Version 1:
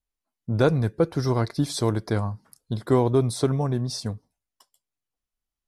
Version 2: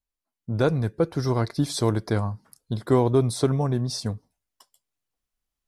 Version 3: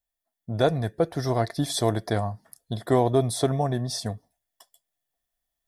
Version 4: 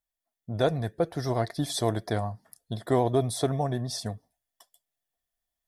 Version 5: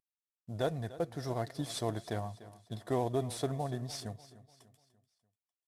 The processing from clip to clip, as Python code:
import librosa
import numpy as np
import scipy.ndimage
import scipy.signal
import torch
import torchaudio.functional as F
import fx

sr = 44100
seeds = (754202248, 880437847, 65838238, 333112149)

y1 = fx.rider(x, sr, range_db=10, speed_s=2.0)
y2 = fx.high_shelf(y1, sr, hz=9000.0, db=11.0)
y2 = fx.small_body(y2, sr, hz=(680.0, 1800.0, 3400.0), ring_ms=25, db=13)
y2 = F.gain(torch.from_numpy(y2), -3.0).numpy()
y3 = fx.vibrato(y2, sr, rate_hz=12.0, depth_cents=40.0)
y3 = F.gain(torch.from_numpy(y3), -3.0).numpy()
y4 = fx.cvsd(y3, sr, bps=64000)
y4 = fx.echo_feedback(y4, sr, ms=295, feedback_pct=44, wet_db=-17.0)
y4 = F.gain(torch.from_numpy(y4), -8.0).numpy()